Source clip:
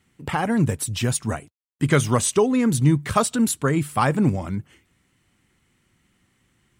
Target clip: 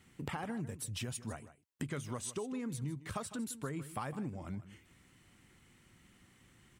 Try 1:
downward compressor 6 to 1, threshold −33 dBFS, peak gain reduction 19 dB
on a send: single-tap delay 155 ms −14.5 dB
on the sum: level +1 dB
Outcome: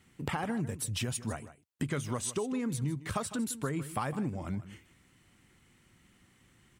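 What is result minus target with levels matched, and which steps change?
downward compressor: peak gain reduction −6 dB
change: downward compressor 6 to 1, threshold −40.5 dBFS, peak gain reduction 25 dB

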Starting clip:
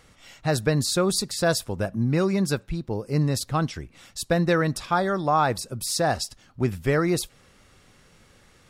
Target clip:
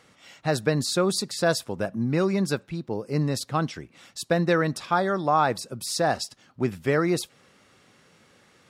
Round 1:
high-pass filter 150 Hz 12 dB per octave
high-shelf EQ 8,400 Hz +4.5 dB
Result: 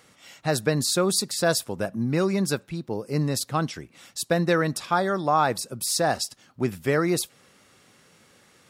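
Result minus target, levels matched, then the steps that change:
8,000 Hz band +5.0 dB
change: high-shelf EQ 8,400 Hz −7 dB

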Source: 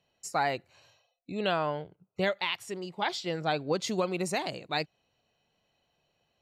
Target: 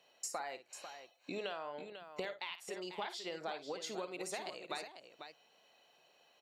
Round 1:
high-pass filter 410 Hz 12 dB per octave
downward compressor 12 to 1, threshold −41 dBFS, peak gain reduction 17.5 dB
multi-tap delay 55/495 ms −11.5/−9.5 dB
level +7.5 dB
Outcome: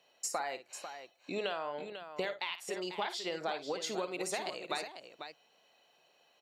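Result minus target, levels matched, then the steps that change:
downward compressor: peak gain reduction −5.5 dB
change: downward compressor 12 to 1, threshold −47 dBFS, peak gain reduction 23 dB

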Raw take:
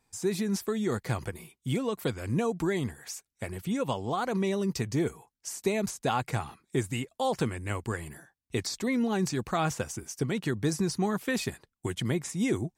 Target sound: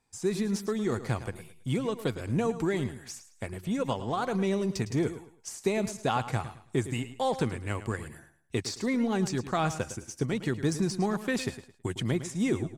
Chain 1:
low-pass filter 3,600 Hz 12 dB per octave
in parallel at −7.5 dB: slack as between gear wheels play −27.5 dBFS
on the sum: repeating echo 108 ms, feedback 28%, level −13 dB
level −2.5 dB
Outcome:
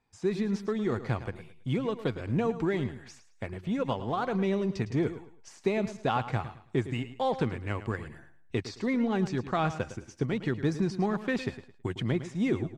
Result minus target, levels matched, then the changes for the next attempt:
8,000 Hz band −12.0 dB
change: low-pass filter 11,000 Hz 12 dB per octave

